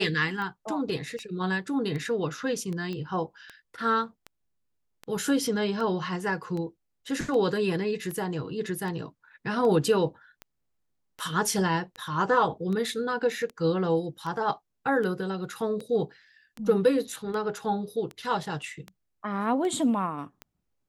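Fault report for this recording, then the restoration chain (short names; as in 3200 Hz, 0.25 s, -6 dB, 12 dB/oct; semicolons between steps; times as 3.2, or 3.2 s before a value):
tick 78 rpm -24 dBFS
2.93 pop -24 dBFS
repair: de-click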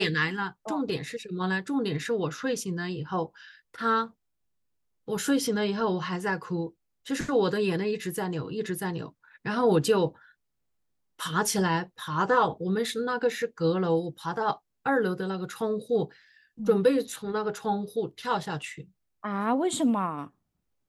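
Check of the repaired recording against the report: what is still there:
none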